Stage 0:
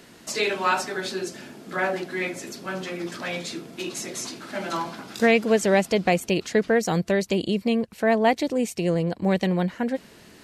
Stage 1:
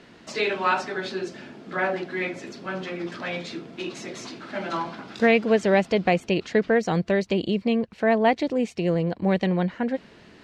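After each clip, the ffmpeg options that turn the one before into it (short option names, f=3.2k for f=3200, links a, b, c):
-af "lowpass=3.9k"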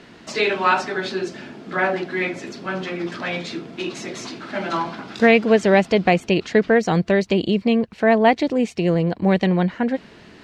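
-af "equalizer=f=530:t=o:w=0.24:g=-2.5,volume=5dB"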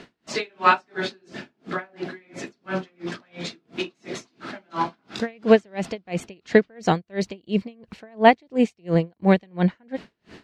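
-af "aeval=exprs='val(0)*pow(10,-38*(0.5-0.5*cos(2*PI*2.9*n/s))/20)':c=same,volume=2.5dB"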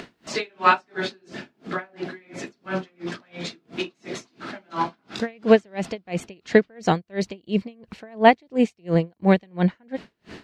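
-af "acompressor=mode=upward:threshold=-33dB:ratio=2.5"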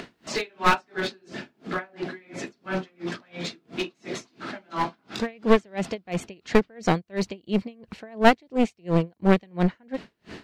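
-af "aeval=exprs='clip(val(0),-1,0.0668)':c=same"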